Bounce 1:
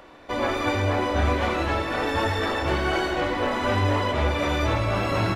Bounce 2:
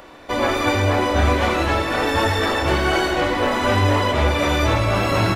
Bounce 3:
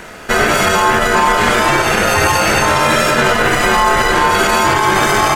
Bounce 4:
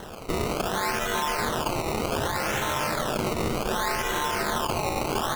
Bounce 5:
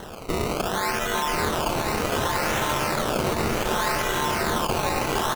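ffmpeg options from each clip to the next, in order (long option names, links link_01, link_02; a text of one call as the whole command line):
ffmpeg -i in.wav -af "highshelf=frequency=6100:gain=7,volume=5dB" out.wav
ffmpeg -i in.wav -af "aeval=exprs='val(0)*sin(2*PI*970*n/s)':channel_layout=same,highshelf=frequency=5600:width_type=q:width=1.5:gain=7,alimiter=level_in=14dB:limit=-1dB:release=50:level=0:latency=1,volume=-1dB" out.wav
ffmpeg -i in.wav -af "acompressor=threshold=-20dB:ratio=2.5,acrusher=samples=18:mix=1:aa=0.000001:lfo=1:lforange=18:lforate=0.66,volume=-7dB" out.wav
ffmpeg -i in.wav -af "aecho=1:1:1036:0.562,volume=1.5dB" out.wav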